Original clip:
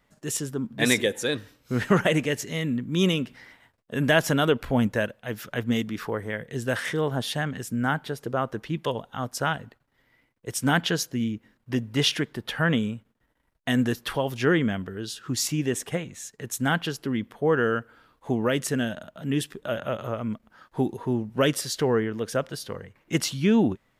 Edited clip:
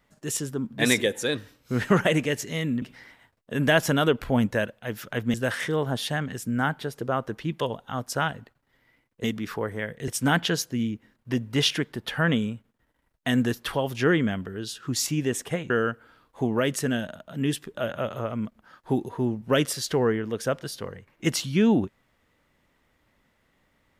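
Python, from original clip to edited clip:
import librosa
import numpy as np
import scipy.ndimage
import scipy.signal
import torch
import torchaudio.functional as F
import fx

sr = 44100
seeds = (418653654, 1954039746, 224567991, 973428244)

y = fx.edit(x, sr, fx.cut(start_s=2.82, length_s=0.41),
    fx.move(start_s=5.75, length_s=0.84, to_s=10.49),
    fx.cut(start_s=16.11, length_s=1.47), tone=tone)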